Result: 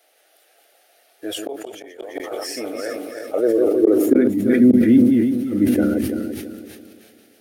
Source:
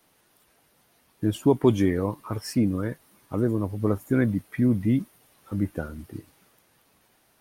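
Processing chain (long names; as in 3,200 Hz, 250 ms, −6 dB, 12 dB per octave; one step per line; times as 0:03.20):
feedback delay that plays each chunk backwards 168 ms, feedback 57%, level −4 dB
high-shelf EQ 3,900 Hz −5.5 dB
gate with flip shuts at −11 dBFS, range −38 dB
phaser with its sweep stopped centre 410 Hz, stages 4
high-pass filter sweep 720 Hz → 200 Hz, 0:03.19–0:04.48
level that may fall only so fast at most 31 dB per second
level +8.5 dB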